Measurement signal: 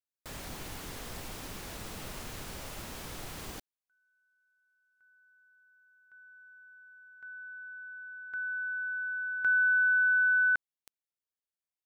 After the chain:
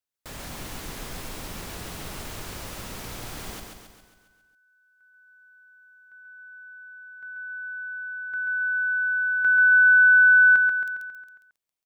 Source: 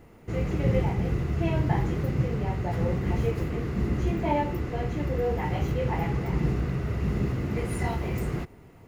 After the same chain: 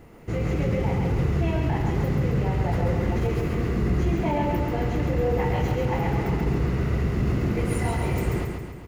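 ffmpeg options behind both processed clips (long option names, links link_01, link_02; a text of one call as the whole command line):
ffmpeg -i in.wav -filter_complex "[0:a]alimiter=limit=-21dB:level=0:latency=1:release=30,asplit=2[link_01][link_02];[link_02]aecho=0:1:136|272|408|544|680|816|952:0.596|0.322|0.174|0.0938|0.0506|0.0274|0.0148[link_03];[link_01][link_03]amix=inputs=2:normalize=0,volume=3.5dB" out.wav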